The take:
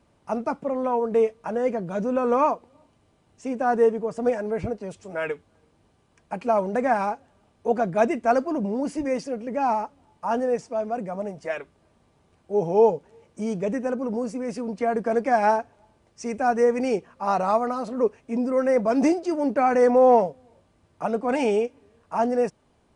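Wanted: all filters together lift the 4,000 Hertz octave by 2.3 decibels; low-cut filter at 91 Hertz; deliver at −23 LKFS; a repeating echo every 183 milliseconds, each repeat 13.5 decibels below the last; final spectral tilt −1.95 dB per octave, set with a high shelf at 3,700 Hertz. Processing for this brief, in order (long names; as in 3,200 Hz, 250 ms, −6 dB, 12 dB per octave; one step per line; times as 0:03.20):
high-pass filter 91 Hz
high-shelf EQ 3,700 Hz −4 dB
parametric band 4,000 Hz +6.5 dB
repeating echo 183 ms, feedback 21%, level −13.5 dB
level +1 dB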